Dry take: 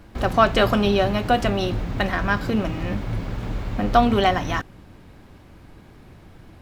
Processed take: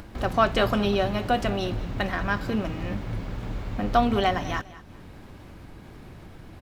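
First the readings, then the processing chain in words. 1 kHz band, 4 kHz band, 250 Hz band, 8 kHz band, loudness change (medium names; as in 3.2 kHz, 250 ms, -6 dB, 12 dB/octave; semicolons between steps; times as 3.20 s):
-4.5 dB, -4.5 dB, -4.5 dB, -4.5 dB, -4.5 dB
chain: upward compressor, threshold -31 dBFS; feedback delay 203 ms, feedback 27%, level -17.5 dB; trim -4.5 dB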